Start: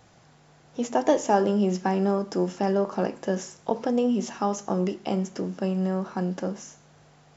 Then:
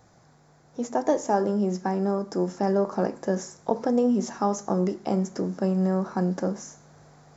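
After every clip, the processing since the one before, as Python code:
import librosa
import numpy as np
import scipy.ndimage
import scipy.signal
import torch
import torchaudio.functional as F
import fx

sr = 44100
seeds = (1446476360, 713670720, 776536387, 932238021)

y = fx.peak_eq(x, sr, hz=2900.0, db=-13.0, octaves=0.63)
y = fx.rider(y, sr, range_db=10, speed_s=2.0)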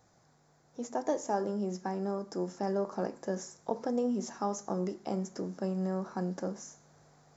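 y = fx.bass_treble(x, sr, bass_db=-2, treble_db=3)
y = F.gain(torch.from_numpy(y), -8.0).numpy()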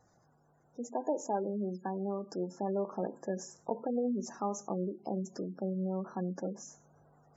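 y = fx.spec_gate(x, sr, threshold_db=-20, keep='strong')
y = F.gain(torch.from_numpy(y), -1.5).numpy()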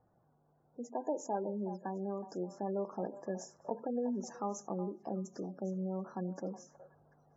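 y = fx.env_lowpass(x, sr, base_hz=1000.0, full_db=-32.5)
y = fx.echo_stepped(y, sr, ms=369, hz=780.0, octaves=1.4, feedback_pct=70, wet_db=-10.5)
y = F.gain(torch.from_numpy(y), -3.0).numpy()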